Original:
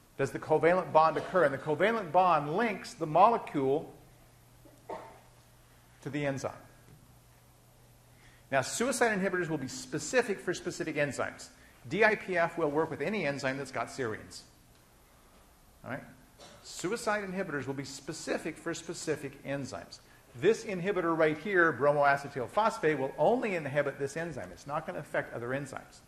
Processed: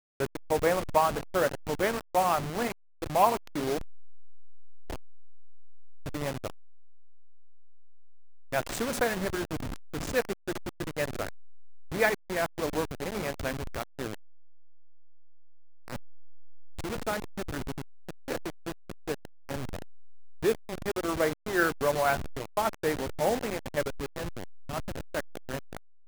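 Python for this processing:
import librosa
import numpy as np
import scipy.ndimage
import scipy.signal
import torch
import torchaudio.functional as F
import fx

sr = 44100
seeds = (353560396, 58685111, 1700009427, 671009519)

y = fx.delta_hold(x, sr, step_db=-28.0)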